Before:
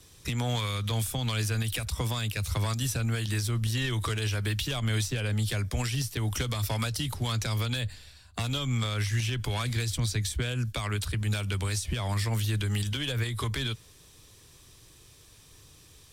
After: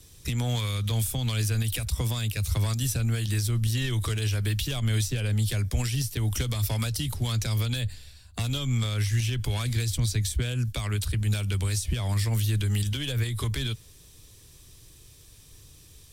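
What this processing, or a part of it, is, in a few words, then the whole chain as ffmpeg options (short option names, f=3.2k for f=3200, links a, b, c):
smiley-face EQ: -af "lowshelf=f=100:g=7.5,equalizer=f=1.1k:t=o:w=1.6:g=-4.5,highshelf=f=9.5k:g=6.5"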